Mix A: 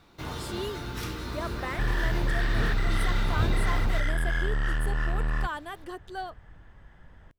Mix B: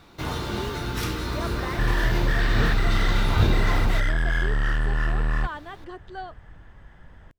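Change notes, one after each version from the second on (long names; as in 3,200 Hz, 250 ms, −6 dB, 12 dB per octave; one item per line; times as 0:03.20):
speech: add high-frequency loss of the air 110 metres
first sound +6.5 dB
second sound +4.0 dB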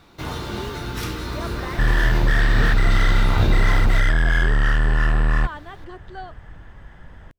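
second sound +5.5 dB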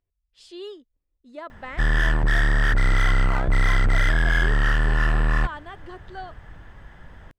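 first sound: muted
master: add low-shelf EQ 420 Hz −2.5 dB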